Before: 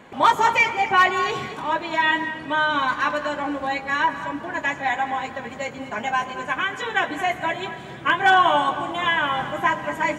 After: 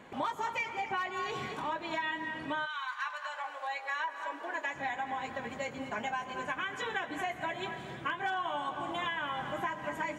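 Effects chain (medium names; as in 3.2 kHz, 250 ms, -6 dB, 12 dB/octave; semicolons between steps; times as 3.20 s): compression 6:1, threshold -26 dBFS, peak gain reduction 14 dB; 2.65–4.73 s: high-pass 1.2 kHz -> 310 Hz 24 dB/octave; trim -6 dB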